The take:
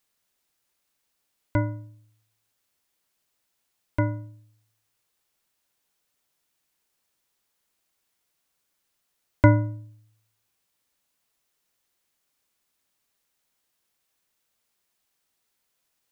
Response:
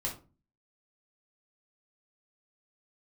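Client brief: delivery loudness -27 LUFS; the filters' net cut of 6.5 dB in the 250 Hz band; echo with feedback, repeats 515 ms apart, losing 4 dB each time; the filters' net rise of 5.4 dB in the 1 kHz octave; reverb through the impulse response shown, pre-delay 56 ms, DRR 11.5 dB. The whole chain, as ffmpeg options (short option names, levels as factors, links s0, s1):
-filter_complex "[0:a]equalizer=f=250:t=o:g=-9,equalizer=f=1000:t=o:g=6,aecho=1:1:515|1030|1545|2060|2575|3090|3605|4120|4635:0.631|0.398|0.25|0.158|0.0994|0.0626|0.0394|0.0249|0.0157,asplit=2[s0][s1];[1:a]atrim=start_sample=2205,adelay=56[s2];[s1][s2]afir=irnorm=-1:irlink=0,volume=0.188[s3];[s0][s3]amix=inputs=2:normalize=0,volume=1.06"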